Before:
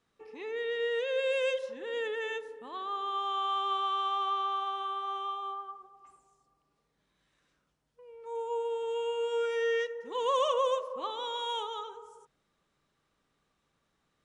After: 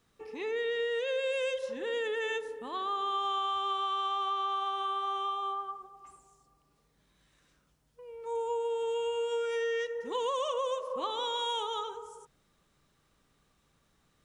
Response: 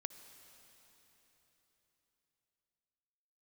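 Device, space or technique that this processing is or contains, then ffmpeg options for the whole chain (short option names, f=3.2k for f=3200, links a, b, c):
ASMR close-microphone chain: -af "lowshelf=f=160:g=8,acompressor=threshold=-33dB:ratio=6,highshelf=f=6.2k:g=8,volume=3.5dB"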